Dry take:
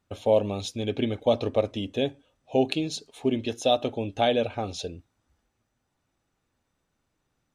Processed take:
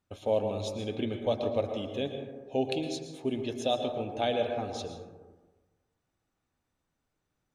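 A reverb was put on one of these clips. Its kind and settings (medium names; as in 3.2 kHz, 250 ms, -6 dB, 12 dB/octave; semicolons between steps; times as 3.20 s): plate-style reverb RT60 1.3 s, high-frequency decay 0.3×, pre-delay 100 ms, DRR 5 dB; trim -6.5 dB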